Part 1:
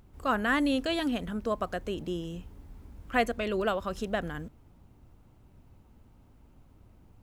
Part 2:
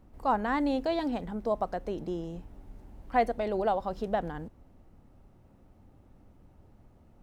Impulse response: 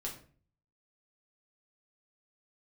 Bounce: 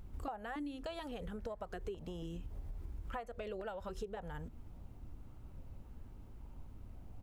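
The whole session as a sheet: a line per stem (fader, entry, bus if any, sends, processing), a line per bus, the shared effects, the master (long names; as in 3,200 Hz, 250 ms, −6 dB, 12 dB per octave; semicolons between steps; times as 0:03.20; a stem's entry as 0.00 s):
−0.5 dB, 0.00 s, no send, low-shelf EQ 70 Hz +11.5 dB; downward compressor 5 to 1, threshold −35 dBFS, peak gain reduction 14 dB
−13.0 dB, 2.2 ms, no send, transient designer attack +6 dB, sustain +2 dB; low-pass on a step sequencer 3.6 Hz 230–1,700 Hz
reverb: not used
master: downward compressor 6 to 1, threshold −40 dBFS, peak gain reduction 15.5 dB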